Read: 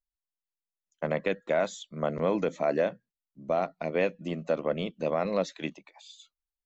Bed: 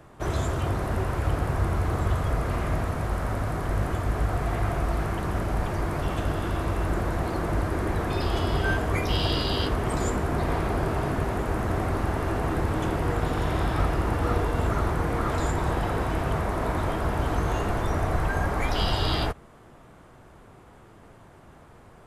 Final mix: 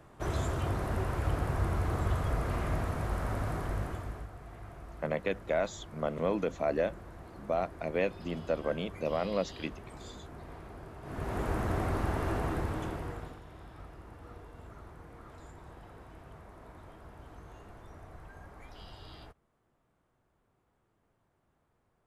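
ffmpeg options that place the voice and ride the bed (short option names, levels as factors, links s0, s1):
-filter_complex "[0:a]adelay=4000,volume=0.668[s0];[1:a]volume=3.35,afade=t=out:st=3.53:d=0.77:silence=0.16788,afade=t=in:st=11.02:d=0.42:silence=0.158489,afade=t=out:st=12.33:d=1.08:silence=0.105925[s1];[s0][s1]amix=inputs=2:normalize=0"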